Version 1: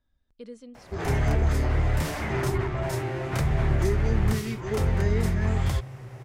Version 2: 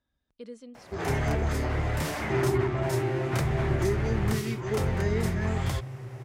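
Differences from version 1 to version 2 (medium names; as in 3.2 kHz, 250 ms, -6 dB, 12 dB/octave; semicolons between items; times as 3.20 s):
second sound +4.5 dB; master: add high-pass 120 Hz 6 dB/octave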